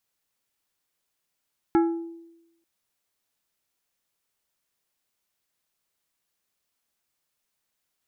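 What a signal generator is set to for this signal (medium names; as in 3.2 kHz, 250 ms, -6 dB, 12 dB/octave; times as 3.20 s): glass hit plate, lowest mode 334 Hz, decay 0.94 s, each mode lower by 7 dB, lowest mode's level -15 dB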